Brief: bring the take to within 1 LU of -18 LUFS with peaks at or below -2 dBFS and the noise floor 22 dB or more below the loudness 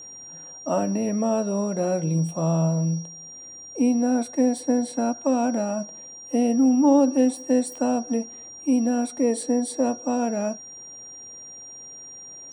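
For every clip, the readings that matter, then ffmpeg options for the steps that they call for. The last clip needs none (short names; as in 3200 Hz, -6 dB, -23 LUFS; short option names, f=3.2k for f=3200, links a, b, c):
steady tone 5700 Hz; tone level -39 dBFS; loudness -23.5 LUFS; peak -8.5 dBFS; loudness target -18.0 LUFS
-> -af "bandreject=f=5.7k:w=30"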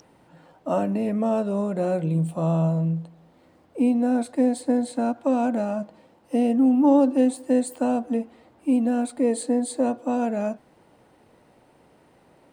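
steady tone none; loudness -23.5 LUFS; peak -8.5 dBFS; loudness target -18.0 LUFS
-> -af "volume=5.5dB"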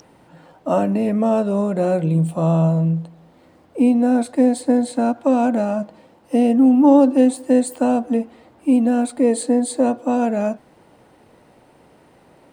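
loudness -18.0 LUFS; peak -3.0 dBFS; noise floor -52 dBFS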